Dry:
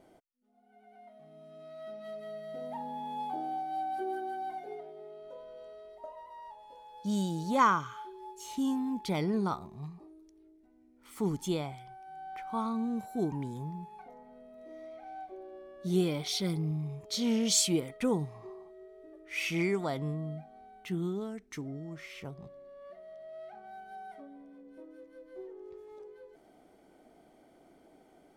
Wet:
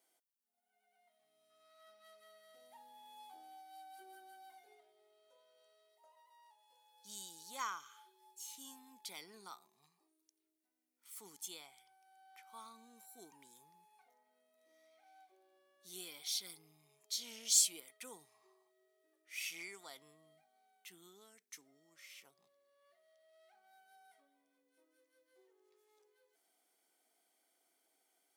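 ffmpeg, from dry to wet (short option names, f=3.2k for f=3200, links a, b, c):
-filter_complex "[0:a]asettb=1/sr,asplit=3[a][b][c];[a]atrim=end=1.504[d];[b]atrim=start=1.5:end=2.55,asetpts=PTS-STARTPTS,afade=t=in:d=0.004:c=qsin,afade=t=out:st=1.046:d=0.004:c=qsin,equalizer=f=1.3k:w=2.1:g=7.5[e];[c]atrim=start=2.546[f];[d][e]acrossfade=d=0.004:c1=hsin:c2=qsin[g];[g][f]acrossfade=d=0.004:c1=qsin:c2=hsin,highpass=190,aderivative,bandreject=f=600:w=12,volume=-1dB"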